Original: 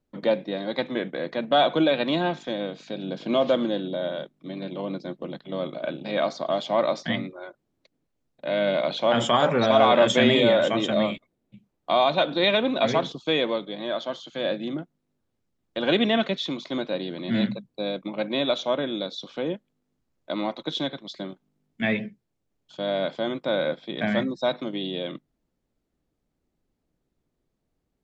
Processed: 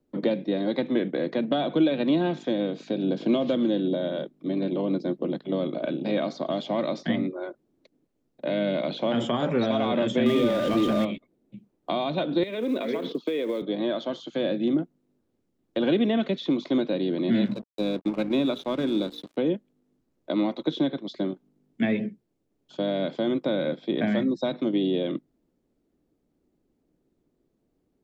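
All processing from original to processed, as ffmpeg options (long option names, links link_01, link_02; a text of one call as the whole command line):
ffmpeg -i in.wav -filter_complex "[0:a]asettb=1/sr,asplit=3[link_01][link_02][link_03];[link_01]atrim=end=10.264[link_04];[link_02]atrim=start=10.26:end=11.05,asetpts=PTS-STARTPTS,afade=type=in:duration=0.004:curve=qsin,afade=type=out:start_time=0.786:duration=0.004:curve=qsin,aeval=exprs='val(0)+0.5*0.0841*sgn(val(0))':channel_layout=same,aeval=exprs='val(0)+0.0631*sin(2*PI*1200*n/s)':channel_layout=same[link_05];[link_03]atrim=start=11.046[link_06];[link_04][link_05]acrossfade=duration=0.004:curve1=hsin:curve2=qsin[link_07];[link_07][link_06]acrossfade=duration=0.004:curve1=qsin:curve2=hsin,asettb=1/sr,asplit=3[link_08][link_09][link_10];[link_08]atrim=end=12.434[link_11];[link_09]atrim=start=12.43:end=13.62,asetpts=PTS-STARTPTS,afade=type=in:duration=0.004:curve=qsin,afade=type=out:start_time=1.186:duration=0.004:curve=qsin,highpass=frequency=190:width=0.5412,highpass=frequency=190:width=1.3066,equalizer=frequency=460:width_type=q:width=4:gain=6,equalizer=frequency=770:width_type=q:width=4:gain=-8,equalizer=frequency=2100:width_type=q:width=4:gain=6,lowpass=frequency=5100:width=0.5412,lowpass=frequency=5100:width=1.3066,acompressor=threshold=-28dB:ratio=16:attack=3.2:release=140:knee=1:detection=peak,acrusher=bits=6:mode=log:mix=0:aa=0.000001[link_12];[link_10]atrim=start=13.616[link_13];[link_11][link_12]acrossfade=duration=0.004:curve1=hsin:curve2=qsin[link_14];[link_14][link_13]acrossfade=duration=0.004:curve1=qsin:curve2=hsin,asettb=1/sr,asplit=3[link_15][link_16][link_17];[link_15]atrim=end=17.454[link_18];[link_16]atrim=start=17.45:end=19.37,asetpts=PTS-STARTPTS,afade=type=in:duration=0.004:curve=qsin,afade=type=out:start_time=1.916:duration=0.004:curve=qsin,aecho=1:1:0.8:0.33,atrim=end_sample=84672,bandreject=frequency=58.21:width_type=h:width=4,bandreject=frequency=116.42:width_type=h:width=4,bandreject=frequency=174.63:width_type=h:width=4,bandreject=frequency=232.84:width_type=h:width=4,bandreject=frequency=291.05:width_type=h:width=4,bandreject=frequency=349.26:width_type=h:width=4,bandreject=frequency=407.47:width_type=h:width=4,bandreject=frequency=465.68:width_type=h:width=4,aeval=exprs='sgn(val(0))*max(abs(val(0))-0.00794,0)':channel_layout=same[link_19];[link_17]atrim=start=19.366[link_20];[link_18][link_19]acrossfade=duration=0.004:curve1=hsin:curve2=qsin[link_21];[link_21][link_20]acrossfade=duration=0.004:curve1=qsin:curve2=hsin,acrossover=split=230|1900|4400[link_22][link_23][link_24][link_25];[link_22]acompressor=threshold=-34dB:ratio=4[link_26];[link_23]acompressor=threshold=-32dB:ratio=4[link_27];[link_24]acompressor=threshold=-37dB:ratio=4[link_28];[link_25]acompressor=threshold=-52dB:ratio=4[link_29];[link_26][link_27][link_28][link_29]amix=inputs=4:normalize=0,equalizer=frequency=320:width=0.72:gain=11.5,volume=-1.5dB" out.wav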